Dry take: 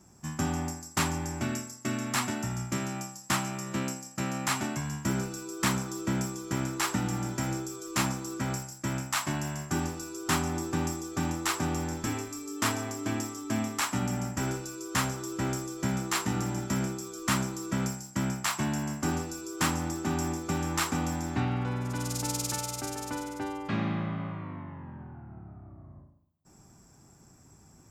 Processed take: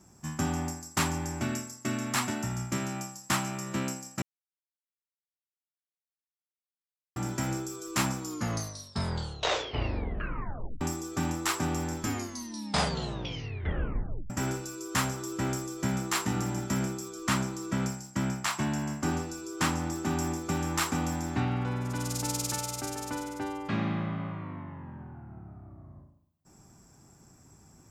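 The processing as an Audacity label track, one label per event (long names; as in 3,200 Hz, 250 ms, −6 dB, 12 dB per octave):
4.220000	7.160000	silence
8.160000	8.160000	tape stop 2.65 s
12.000000	12.000000	tape stop 2.30 s
17.090000	19.920000	high-shelf EQ 10,000 Hz −7.5 dB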